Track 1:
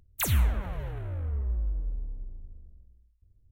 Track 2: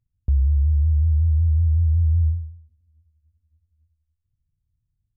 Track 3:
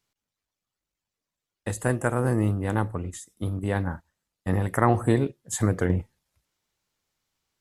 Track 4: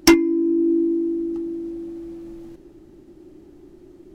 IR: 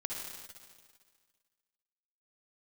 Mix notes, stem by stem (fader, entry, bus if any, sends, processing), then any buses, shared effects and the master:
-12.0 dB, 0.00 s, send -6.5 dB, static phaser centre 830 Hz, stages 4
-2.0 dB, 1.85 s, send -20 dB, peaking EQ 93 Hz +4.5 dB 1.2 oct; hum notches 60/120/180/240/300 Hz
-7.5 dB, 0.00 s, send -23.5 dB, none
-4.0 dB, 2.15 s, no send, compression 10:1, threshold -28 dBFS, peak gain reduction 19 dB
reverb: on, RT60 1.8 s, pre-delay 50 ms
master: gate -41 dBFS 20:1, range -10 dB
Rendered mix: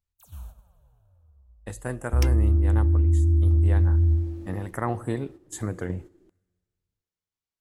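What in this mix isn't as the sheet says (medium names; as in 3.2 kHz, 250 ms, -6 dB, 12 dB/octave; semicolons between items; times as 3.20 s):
stem 1 -12.0 dB -> -18.5 dB; stem 2: missing peaking EQ 93 Hz +4.5 dB 1.2 oct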